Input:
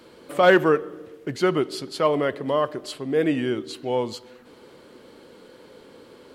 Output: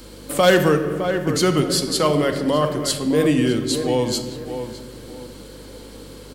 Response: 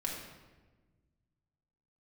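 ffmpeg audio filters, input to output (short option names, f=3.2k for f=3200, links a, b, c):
-filter_complex "[0:a]bass=f=250:g=7,treble=f=4k:g=14,asplit=2[a][b];[b]adelay=610,lowpass=f=2.3k:p=1,volume=-11dB,asplit=2[c][d];[d]adelay=610,lowpass=f=2.3k:p=1,volume=0.3,asplit=2[e][f];[f]adelay=610,lowpass=f=2.3k:p=1,volume=0.3[g];[a][c][e][g]amix=inputs=4:normalize=0,asplit=2[h][i];[1:a]atrim=start_sample=2205[j];[i][j]afir=irnorm=-1:irlink=0,volume=-4dB[k];[h][k]amix=inputs=2:normalize=0,aeval=exprs='val(0)+0.00708*(sin(2*PI*50*n/s)+sin(2*PI*2*50*n/s)/2+sin(2*PI*3*50*n/s)/3+sin(2*PI*4*50*n/s)/4+sin(2*PI*5*50*n/s)/5)':c=same,acrossover=split=170|3000[l][m][n];[m]acompressor=threshold=-20dB:ratio=1.5[o];[l][o][n]amix=inputs=3:normalize=0"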